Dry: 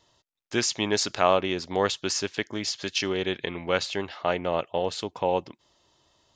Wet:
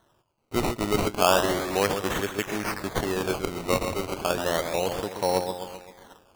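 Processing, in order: split-band echo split 1300 Hz, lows 0.132 s, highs 0.376 s, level -7 dB; decimation with a swept rate 18×, swing 100% 0.33 Hz

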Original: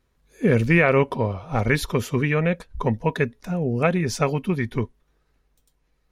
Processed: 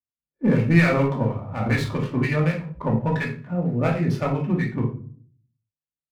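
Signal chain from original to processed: Wiener smoothing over 9 samples; low-pass opened by the level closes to 720 Hz, open at -15 dBFS; HPF 64 Hz 24 dB/oct; expander -45 dBFS; bell 380 Hz -4 dB 0.59 oct; in parallel at -10.5 dB: wavefolder -16.5 dBFS; on the sum: harmonic tremolo 4.2 Hz, depth 70%, crossover 1200 Hz; shoebox room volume 400 m³, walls furnished, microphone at 2.5 m; running maximum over 3 samples; gain -3.5 dB

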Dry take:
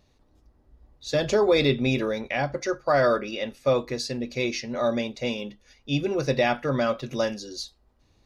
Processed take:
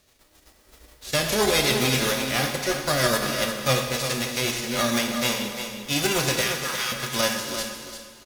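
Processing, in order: spectral whitening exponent 0.3; 6.41–6.92 elliptic high-pass 850 Hz; limiter -14 dBFS, peak gain reduction 7.5 dB; rotary speaker horn 7.5 Hz, later 0.8 Hz, at 4.56; feedback echo 0.349 s, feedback 22%, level -8.5 dB; plate-style reverb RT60 2 s, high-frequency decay 0.85×, DRR 4 dB; gain +3.5 dB

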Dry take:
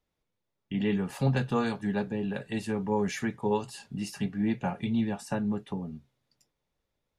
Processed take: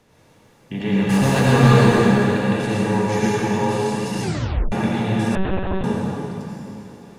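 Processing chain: per-bin compression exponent 0.6; 1.09–1.9 sample leveller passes 2; reverb RT60 3.3 s, pre-delay 73 ms, DRR -7 dB; 4.22 tape stop 0.50 s; 5.35–5.84 monotone LPC vocoder at 8 kHz 190 Hz

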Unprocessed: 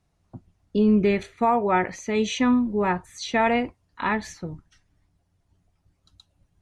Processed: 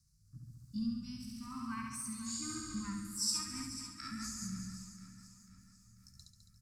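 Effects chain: repeated pitch sweeps +6 st, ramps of 0.685 s; compressor 2:1, threshold -37 dBFS, peak gain reduction 11.5 dB; Chebyshev band-stop 230–1300 Hz, order 2; harmonic-percussive split percussive -10 dB; EQ curve 130 Hz 0 dB, 290 Hz -12 dB, 600 Hz -29 dB, 1100 Hz -9 dB, 3200 Hz -16 dB, 4800 Hz +11 dB; flutter echo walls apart 11.9 m, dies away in 1.4 s; dynamic EQ 3400 Hz, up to -6 dB, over -55 dBFS, Q 0.96; rotary speaker horn 1 Hz, later 5 Hz, at 2.86; feedback echo 0.492 s, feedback 48%, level -13 dB; gain +4.5 dB

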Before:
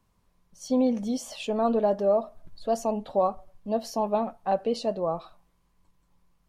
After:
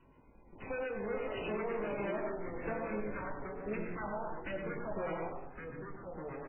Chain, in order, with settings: minimum comb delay 2 ms; compressor 3:1, threshold -36 dBFS, peak gain reduction 12 dB; bell 270 Hz +13.5 dB 0.94 oct; soft clip -38.5 dBFS, distortion -6 dB; dynamic EQ 780 Hz, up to -3 dB, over -55 dBFS, Q 2.5; 2.81–4.95 phaser stages 4, 1.3 Hz, lowest notch 330–1000 Hz; LFO low-pass square 8.3 Hz 830–2400 Hz; doubler 19 ms -8.5 dB; darkening echo 99 ms, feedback 34%, low-pass 2800 Hz, level -4.5 dB; limiter -34.5 dBFS, peak gain reduction 6.5 dB; echoes that change speed 0.271 s, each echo -3 st, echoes 3, each echo -6 dB; gain +4 dB; MP3 8 kbps 8000 Hz

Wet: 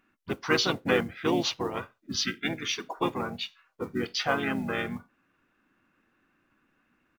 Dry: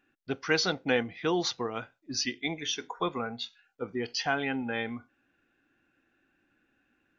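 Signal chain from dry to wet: modulation noise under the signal 30 dB; harmoniser -7 st -8 dB, -4 st -4 dB

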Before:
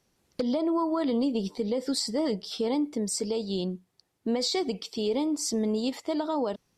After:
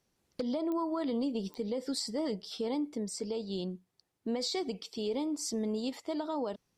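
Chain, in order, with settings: 3.03–3.52 high shelf 7600 Hz -8.5 dB; pops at 0.72/1.54, -20 dBFS; gain -6 dB

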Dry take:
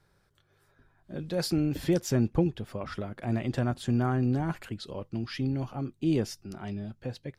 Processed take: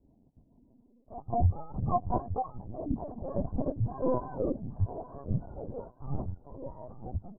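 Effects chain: spectrum mirrored in octaves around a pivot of 620 Hz; steep low-pass 860 Hz 48 dB/oct; on a send: feedback echo 0.868 s, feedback 31%, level -14 dB; on the sum: rotary speaker horn 6.7 Hz, later 1.1 Hz, at 1.69; in parallel at 0 dB: level quantiser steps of 20 dB; on the sum: LPC vocoder at 8 kHz pitch kept; gain +5 dB

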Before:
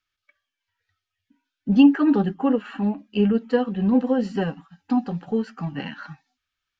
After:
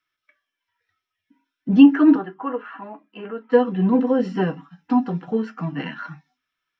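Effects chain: 2.15–3.52 band-pass 1100 Hz, Q 1.2; reverb, pre-delay 3 ms, DRR 4 dB; gain -2.5 dB

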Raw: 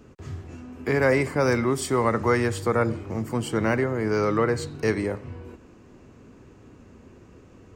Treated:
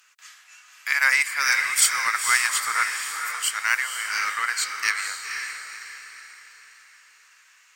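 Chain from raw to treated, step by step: HPF 1500 Hz 24 dB/oct; high shelf 6800 Hz +8.5 dB; in parallel at -11 dB: crossover distortion -43.5 dBFS; on the sum: added harmonics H 5 -30 dB, 7 -25 dB, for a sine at -11.5 dBFS; diffused feedback echo 0.5 s, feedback 43%, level -5.5 dB; gain +8 dB

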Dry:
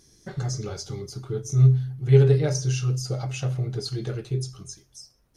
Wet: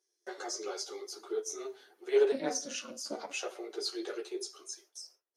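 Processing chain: chorus voices 6, 1.5 Hz, delay 11 ms, depth 3 ms; gate with hold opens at -46 dBFS; in parallel at -12 dB: soft clip -21.5 dBFS, distortion -11 dB; on the sum: elliptic high-pass 360 Hz, stop band 60 dB; 2.32–3.33 ring modulator 140 Hz

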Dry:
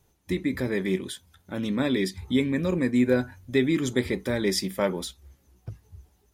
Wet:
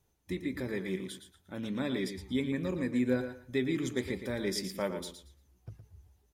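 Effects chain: feedback echo 0.115 s, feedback 21%, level -9 dB; gain -8.5 dB

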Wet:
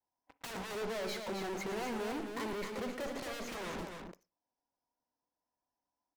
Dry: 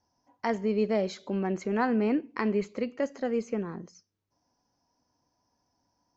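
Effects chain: one diode to ground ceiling -23 dBFS; LPF 1500 Hz 6 dB/oct; bell 110 Hz -13.5 dB 2.8 oct; sample leveller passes 5; compressor, threshold -29 dBFS, peak gain reduction 5.5 dB; 0.75–3.19 overloaded stage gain 36 dB; vibrato 0.38 Hz 22 cents; wavefolder -33.5 dBFS; loudspeakers at several distances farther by 39 m -11 dB, 90 m -6 dB; reverb, pre-delay 32 ms, DRR 19.5 dB; gain -2 dB

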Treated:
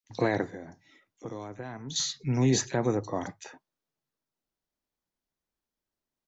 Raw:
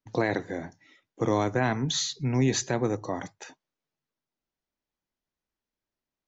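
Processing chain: 0.45–1.96 compressor 3:1, threshold -41 dBFS, peak gain reduction 15 dB; bands offset in time highs, lows 40 ms, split 2300 Hz

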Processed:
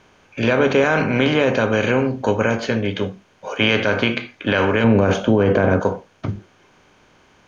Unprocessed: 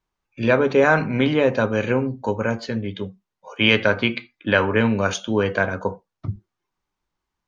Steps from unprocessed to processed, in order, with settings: per-bin compression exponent 0.6; 4.84–5.8 tilt shelf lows +8.5 dB, about 1400 Hz; limiter -5.5 dBFS, peak gain reduction 8.5 dB

